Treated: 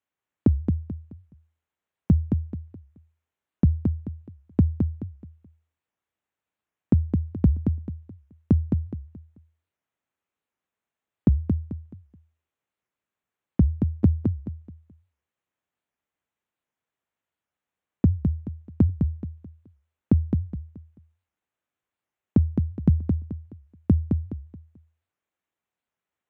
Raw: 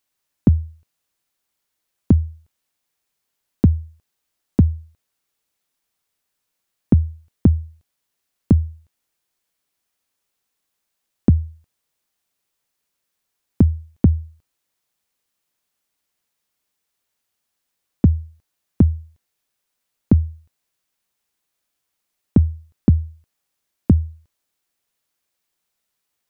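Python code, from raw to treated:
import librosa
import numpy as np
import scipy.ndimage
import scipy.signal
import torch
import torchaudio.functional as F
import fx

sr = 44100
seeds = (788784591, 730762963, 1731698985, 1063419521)

y = fx.wiener(x, sr, points=9)
y = scipy.signal.sosfilt(scipy.signal.butter(2, 53.0, 'highpass', fs=sr, output='sos'), y)
y = fx.echo_feedback(y, sr, ms=214, feedback_pct=31, wet_db=-5.0)
y = fx.record_warp(y, sr, rpm=78.0, depth_cents=250.0)
y = F.gain(torch.from_numpy(y), -5.0).numpy()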